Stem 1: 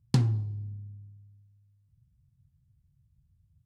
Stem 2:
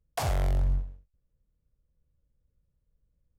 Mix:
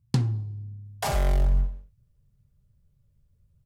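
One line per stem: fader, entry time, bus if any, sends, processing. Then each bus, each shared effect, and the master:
0.0 dB, 0.00 s, no send, dry
+2.0 dB, 0.85 s, no send, comb 5 ms, depth 76%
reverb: off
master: dry

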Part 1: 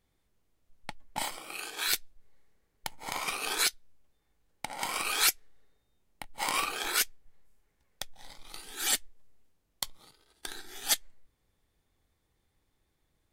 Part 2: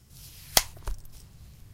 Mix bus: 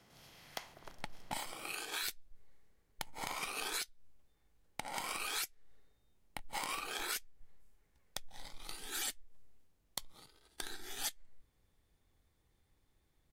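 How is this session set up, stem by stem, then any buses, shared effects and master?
-1.5 dB, 0.15 s, no send, dry
-15.5 dB, 0.00 s, no send, per-bin compression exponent 0.6; three-band isolator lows -22 dB, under 160 Hz, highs -14 dB, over 3400 Hz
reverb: off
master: low shelf 160 Hz +3.5 dB; compressor 5:1, threshold -37 dBFS, peak gain reduction 14 dB

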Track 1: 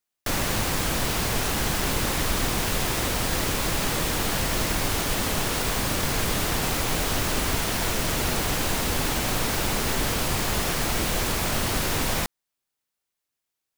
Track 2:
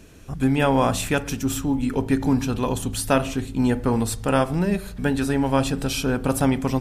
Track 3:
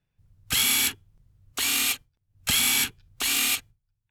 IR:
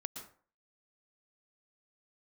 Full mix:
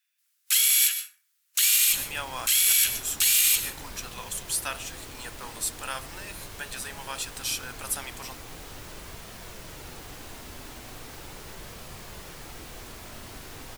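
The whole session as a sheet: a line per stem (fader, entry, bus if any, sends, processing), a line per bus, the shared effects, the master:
-13.0 dB, 1.60 s, no send, flange 0.39 Hz, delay 1.6 ms, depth 1.5 ms, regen -69%
-8.5 dB, 1.55 s, no send, HPF 1200 Hz 12 dB/oct; high shelf 3600 Hz +11 dB
+2.5 dB, 0.00 s, send -9 dB, HPF 1500 Hz 24 dB/oct; high shelf 5200 Hz +12 dB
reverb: on, RT60 0.45 s, pre-delay 0.107 s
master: limiter -11 dBFS, peak gain reduction 13 dB

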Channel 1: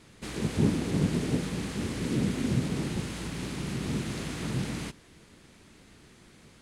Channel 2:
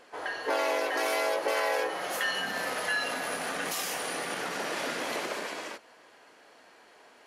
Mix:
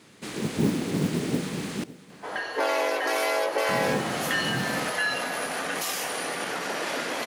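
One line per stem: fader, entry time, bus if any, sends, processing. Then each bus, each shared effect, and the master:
+3.0 dB, 0.00 s, muted 1.84–3.69, no send, echo send -18 dB, HPF 170 Hz 12 dB/oct; modulation noise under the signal 24 dB
+3.0 dB, 2.10 s, no send, no echo send, dry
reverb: off
echo: echo 0.557 s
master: dry

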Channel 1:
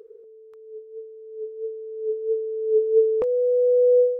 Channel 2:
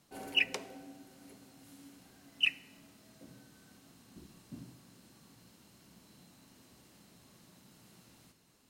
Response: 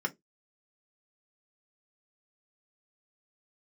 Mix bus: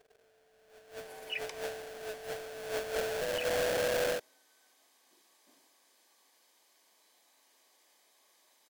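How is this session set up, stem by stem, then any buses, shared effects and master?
0.76 s -20.5 dB -> 0.97 s -8 dB -> 1.79 s -8 dB -> 2.11 s -16 dB -> 2.93 s -16 dB -> 3.69 s -6.5 dB, 0.00 s, no send, sample-rate reducer 1100 Hz, jitter 20%
-1.5 dB, 0.95 s, no send, Bessel high-pass 680 Hz, order 4; notch comb 1400 Hz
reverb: off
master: limiter -27.5 dBFS, peak gain reduction 9 dB

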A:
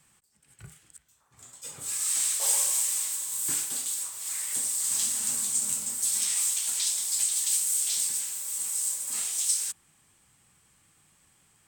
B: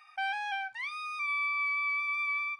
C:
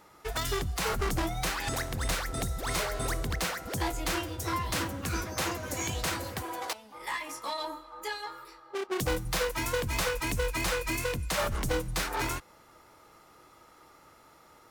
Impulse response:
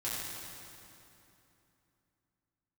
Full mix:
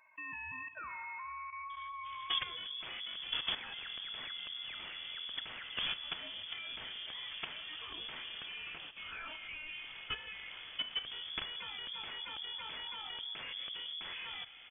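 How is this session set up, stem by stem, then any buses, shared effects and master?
+2.0 dB, 1.70 s, send -18 dB, minimum comb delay 0.51 ms; tilt shelf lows +4 dB; negative-ratio compressor -44 dBFS, ratio -1
-5.5 dB, 0.00 s, send -9 dB, limiter -32 dBFS, peak gain reduction 8.5 dB
+1.5 dB, 2.05 s, send -20 dB, bell 380 Hz +3.5 dB 0.25 oct; compressor 10:1, threshold -35 dBFS, peak gain reduction 11.5 dB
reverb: on, RT60 2.9 s, pre-delay 4 ms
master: level quantiser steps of 11 dB; inverted band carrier 3400 Hz

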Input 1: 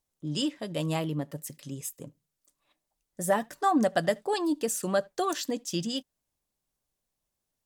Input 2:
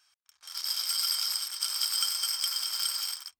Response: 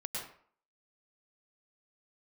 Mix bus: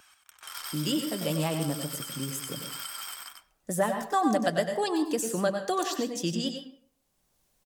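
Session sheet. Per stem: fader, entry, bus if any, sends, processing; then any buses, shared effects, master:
-2.5 dB, 0.50 s, send -6.5 dB, echo send -7 dB, dry
+0.5 dB, 0.00 s, send -15.5 dB, echo send -5 dB, bell 5100 Hz -12.5 dB 0.7 oct; compressor, threshold -39 dBFS, peak gain reduction 10.5 dB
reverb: on, RT60 0.55 s, pre-delay 97 ms
echo: echo 95 ms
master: vibrato 7.6 Hz 41 cents; three-band squash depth 40%

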